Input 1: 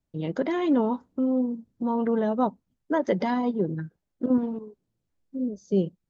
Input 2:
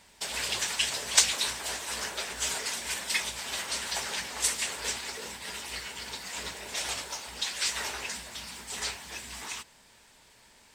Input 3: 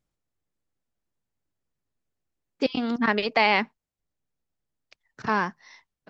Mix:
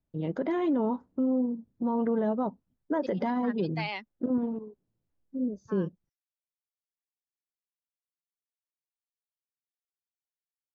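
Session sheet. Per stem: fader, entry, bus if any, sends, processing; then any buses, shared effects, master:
-1.5 dB, 0.00 s, no send, high shelf 2800 Hz -12 dB
off
-16.0 dB, 0.40 s, no send, per-bin expansion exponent 2; three-band expander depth 100%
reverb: off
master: limiter -20 dBFS, peak gain reduction 6.5 dB

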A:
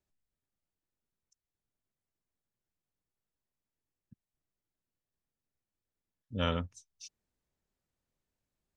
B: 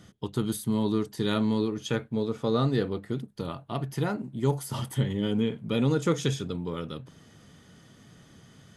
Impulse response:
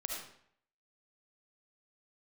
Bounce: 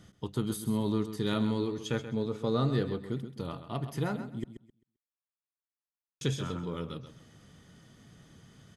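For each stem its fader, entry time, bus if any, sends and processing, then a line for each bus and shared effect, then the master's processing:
-6.0 dB, 0.00 s, no send, echo send -10.5 dB, band-pass 1200 Hz, Q 1.8
-4.0 dB, 0.00 s, muted 4.44–6.21, no send, echo send -11 dB, dry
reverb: off
echo: feedback echo 0.131 s, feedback 23%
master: low shelf 64 Hz +7 dB

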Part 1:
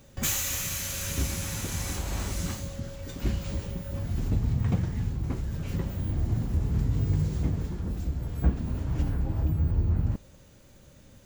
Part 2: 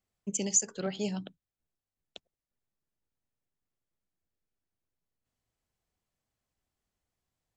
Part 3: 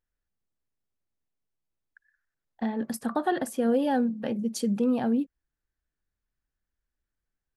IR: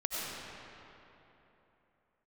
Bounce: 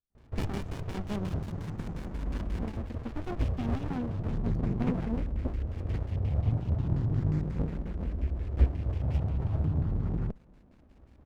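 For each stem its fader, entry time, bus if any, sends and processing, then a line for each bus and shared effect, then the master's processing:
+1.5 dB, 0.15 s, no send, high shelf 6000 Hz +8.5 dB; endless phaser +0.36 Hz
+0.5 dB, 0.10 s, no send, dry
-7.0 dB, 0.00 s, no send, reverb removal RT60 0.78 s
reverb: off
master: LFO low-pass square 5.6 Hz 640–2500 Hz; running maximum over 65 samples

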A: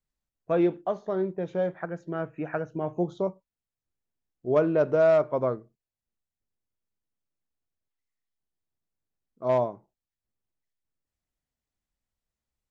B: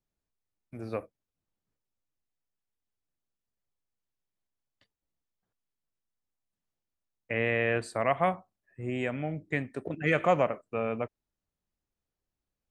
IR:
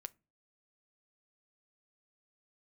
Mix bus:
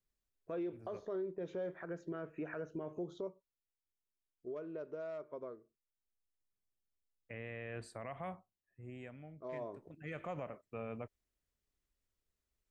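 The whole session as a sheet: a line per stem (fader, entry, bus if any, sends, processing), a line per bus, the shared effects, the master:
3.09 s -3 dB -> 3.85 s -12 dB -> 9.53 s -12 dB -> 9.76 s -1 dB, 0.00 s, no send, thirty-one-band EQ 125 Hz -11 dB, 200 Hz -6 dB, 400 Hz +6 dB, 800 Hz -8 dB; compressor 4:1, threshold -31 dBFS, peak gain reduction 12 dB
-12.0 dB, 0.00 s, no send, low shelf 120 Hz +10.5 dB; auto duck -11 dB, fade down 1.25 s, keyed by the first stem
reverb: off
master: limiter -33 dBFS, peak gain reduction 11.5 dB

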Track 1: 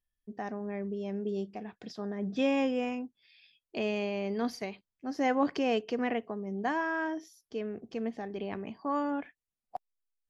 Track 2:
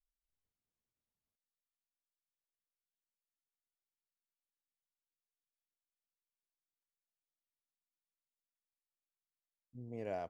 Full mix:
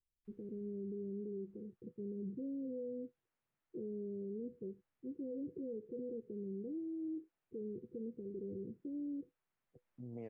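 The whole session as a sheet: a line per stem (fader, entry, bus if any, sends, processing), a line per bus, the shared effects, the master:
+1.5 dB, 0.00 s, no send, rippled Chebyshev low-pass 510 Hz, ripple 9 dB
+1.0 dB, 0.25 s, no send, three-band squash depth 70%; auto duck -10 dB, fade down 0.75 s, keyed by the first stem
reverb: off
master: limiter -37 dBFS, peak gain reduction 11.5 dB

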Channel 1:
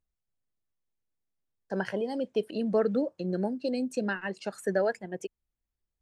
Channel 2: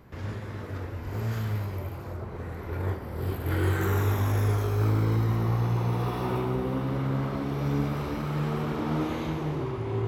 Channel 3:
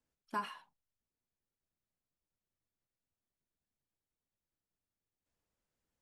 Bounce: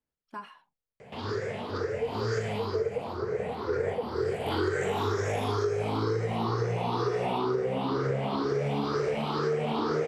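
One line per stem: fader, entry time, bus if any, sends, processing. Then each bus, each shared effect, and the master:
-6.0 dB, 0.00 s, bus A, no send, double band-pass 330 Hz, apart 1.1 oct; comb 6.5 ms, depth 68%
+2.5 dB, 1.00 s, bus A, no send, moving spectral ripple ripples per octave 0.52, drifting +2.1 Hz, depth 15 dB
-2.5 dB, 0.00 s, no bus, no send, LPF 3200 Hz 6 dB/oct
bus A: 0.0 dB, speaker cabinet 170–8700 Hz, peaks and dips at 180 Hz -4 dB, 300 Hz -8 dB, 440 Hz +10 dB, 720 Hz +3 dB, 3100 Hz +3 dB, 4700 Hz +7 dB; compressor, threshold -25 dBFS, peak gain reduction 9.5 dB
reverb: off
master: dry

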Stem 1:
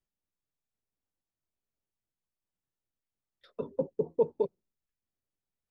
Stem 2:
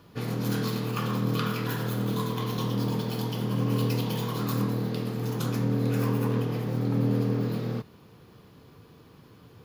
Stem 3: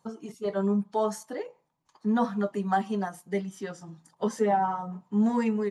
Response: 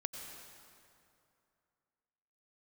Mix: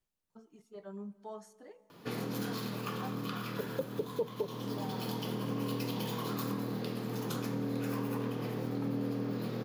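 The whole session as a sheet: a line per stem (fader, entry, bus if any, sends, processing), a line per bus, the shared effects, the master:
+2.5 dB, 0.00 s, no send, dry
-2.0 dB, 1.90 s, send -7 dB, HPF 190 Hz 12 dB/oct; auto duck -12 dB, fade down 1.30 s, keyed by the first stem
-19.5 dB, 0.30 s, send -14 dB, dry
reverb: on, RT60 2.6 s, pre-delay 83 ms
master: compressor 2.5:1, threshold -35 dBFS, peak gain reduction 11.5 dB

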